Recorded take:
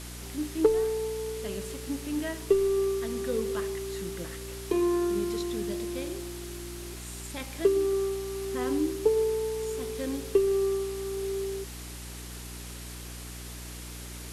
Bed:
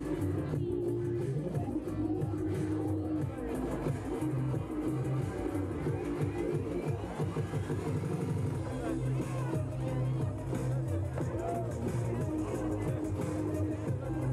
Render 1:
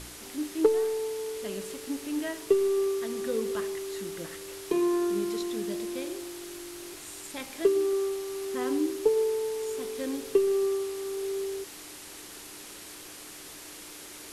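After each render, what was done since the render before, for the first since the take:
hum removal 60 Hz, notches 4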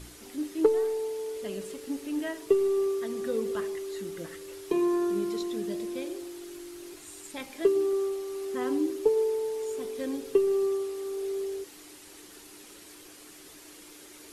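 broadband denoise 7 dB, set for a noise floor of −45 dBFS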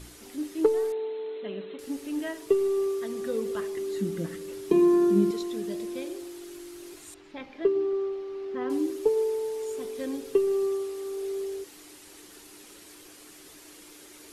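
0:00.92–0:01.79: linear-phase brick-wall band-pass 150–4,200 Hz
0:03.77–0:05.31: parametric band 200 Hz +14.5 dB 1.3 octaves
0:07.14–0:08.70: high-frequency loss of the air 260 metres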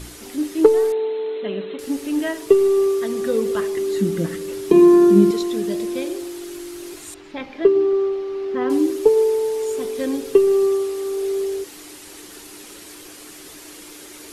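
level +9.5 dB
brickwall limiter −2 dBFS, peak gain reduction 2 dB

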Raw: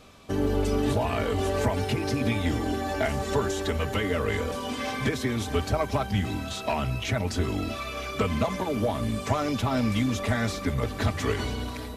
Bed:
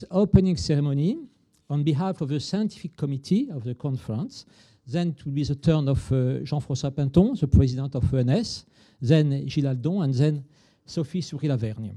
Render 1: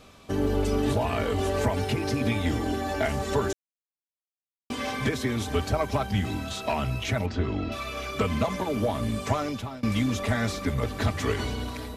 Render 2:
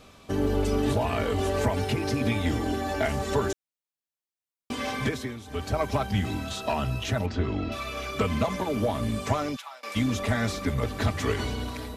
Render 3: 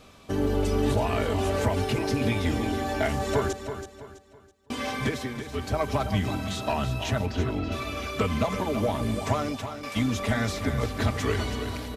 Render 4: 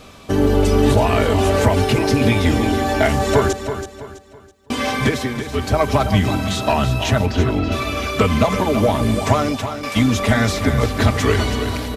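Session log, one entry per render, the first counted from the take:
0:03.53–0:04.70: silence; 0:07.26–0:07.72: high-frequency loss of the air 200 metres; 0:09.32–0:09.83: fade out, to −23 dB
0:05.02–0:05.82: duck −15 dB, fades 0.40 s; 0:06.55–0:07.24: notch filter 2,200 Hz, Q 6; 0:09.55–0:09.95: high-pass filter 1,200 Hz → 440 Hz 24 dB per octave
repeating echo 328 ms, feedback 34%, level −9.5 dB
level +10 dB

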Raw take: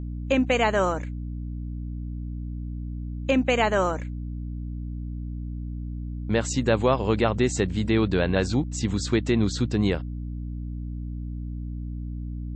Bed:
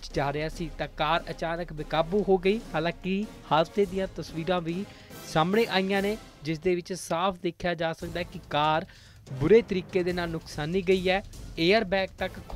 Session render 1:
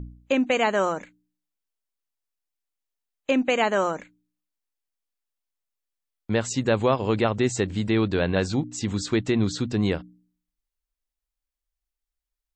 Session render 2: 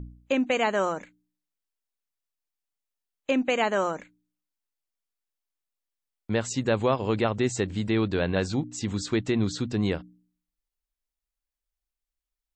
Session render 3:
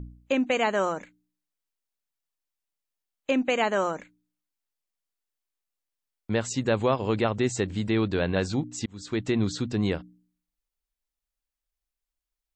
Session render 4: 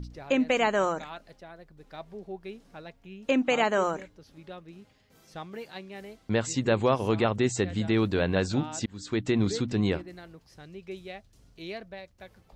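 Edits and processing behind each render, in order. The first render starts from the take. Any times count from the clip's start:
hum removal 60 Hz, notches 5
level −2.5 dB
0:08.86–0:09.28: fade in
mix in bed −16.5 dB

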